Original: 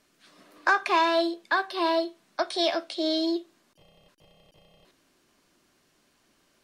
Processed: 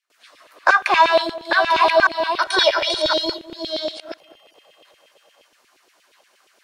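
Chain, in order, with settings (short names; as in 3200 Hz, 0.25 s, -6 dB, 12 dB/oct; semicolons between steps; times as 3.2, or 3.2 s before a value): reverse delay 0.69 s, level -4 dB; gate with hold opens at -57 dBFS; LFO high-pass saw down 8.5 Hz 410–2900 Hz; 2.4–3.39 comb 2.1 ms, depth 85%; on a send: darkening echo 0.204 s, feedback 18%, low-pass 1100 Hz, level -14.5 dB; on the sum: gain +5.5 dB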